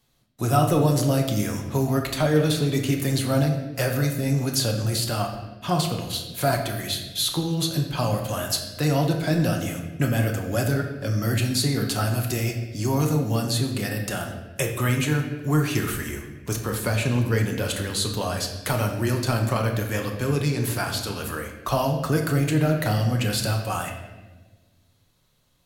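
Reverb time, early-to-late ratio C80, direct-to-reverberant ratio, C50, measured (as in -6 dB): 1.3 s, 8.5 dB, 2.0 dB, 6.0 dB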